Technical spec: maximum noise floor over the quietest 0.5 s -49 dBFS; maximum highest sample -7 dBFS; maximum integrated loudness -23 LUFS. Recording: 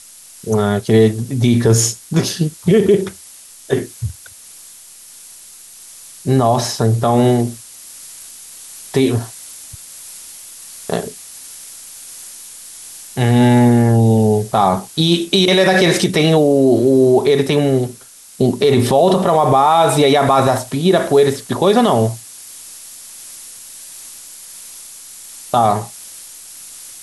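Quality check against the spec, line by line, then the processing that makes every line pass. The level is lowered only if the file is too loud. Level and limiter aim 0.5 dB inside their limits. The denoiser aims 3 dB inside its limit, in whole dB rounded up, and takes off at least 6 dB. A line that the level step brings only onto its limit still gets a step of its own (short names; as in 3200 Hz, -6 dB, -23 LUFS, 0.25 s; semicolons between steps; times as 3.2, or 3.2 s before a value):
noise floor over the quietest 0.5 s -40 dBFS: fail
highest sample -3.0 dBFS: fail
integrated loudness -14.5 LUFS: fail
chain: denoiser 6 dB, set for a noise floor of -40 dBFS; gain -9 dB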